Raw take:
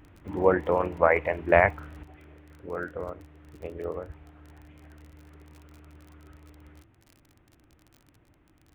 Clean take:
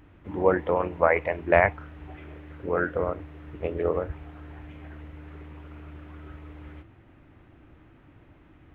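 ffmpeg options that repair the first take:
ffmpeg -i in.wav -af "adeclick=threshold=4,asetnsamples=nb_out_samples=441:pad=0,asendcmd='2.03 volume volume 8dB',volume=0dB" out.wav

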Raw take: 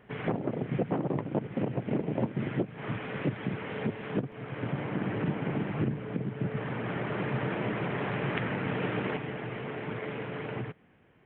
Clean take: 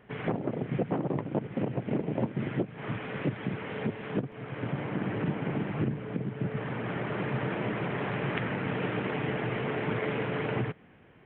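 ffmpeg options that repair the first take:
ffmpeg -i in.wav -af "asetnsamples=nb_out_samples=441:pad=0,asendcmd='9.17 volume volume 5.5dB',volume=0dB" out.wav

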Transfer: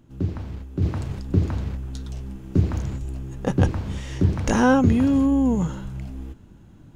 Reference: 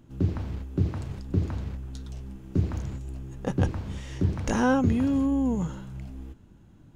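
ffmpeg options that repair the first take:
ffmpeg -i in.wav -filter_complex "[0:a]asplit=3[link_01][link_02][link_03];[link_01]afade=type=out:start_time=2.99:duration=0.02[link_04];[link_02]highpass=frequency=140:width=0.5412,highpass=frequency=140:width=1.3066,afade=type=in:start_time=2.99:duration=0.02,afade=type=out:start_time=3.11:duration=0.02[link_05];[link_03]afade=type=in:start_time=3.11:duration=0.02[link_06];[link_04][link_05][link_06]amix=inputs=3:normalize=0,asplit=3[link_07][link_08][link_09];[link_07]afade=type=out:start_time=5.82:duration=0.02[link_10];[link_08]highpass=frequency=140:width=0.5412,highpass=frequency=140:width=1.3066,afade=type=in:start_time=5.82:duration=0.02,afade=type=out:start_time=5.94:duration=0.02[link_11];[link_09]afade=type=in:start_time=5.94:duration=0.02[link_12];[link_10][link_11][link_12]amix=inputs=3:normalize=0,asetnsamples=nb_out_samples=441:pad=0,asendcmd='0.82 volume volume -5.5dB',volume=0dB" out.wav

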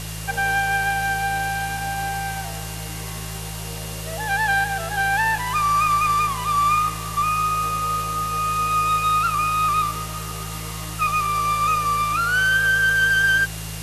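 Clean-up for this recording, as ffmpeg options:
ffmpeg -i in.wav -af "adeclick=threshold=4,bandreject=frequency=53.9:width_type=h:width=4,bandreject=frequency=107.8:width_type=h:width=4,bandreject=frequency=161.7:width_type=h:width=4,bandreject=frequency=2800:width=30,afwtdn=0.02" out.wav

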